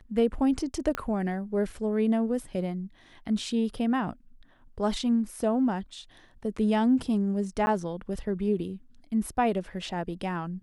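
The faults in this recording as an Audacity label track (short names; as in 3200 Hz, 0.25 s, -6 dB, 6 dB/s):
0.950000	0.950000	pop -16 dBFS
7.660000	7.670000	gap 10 ms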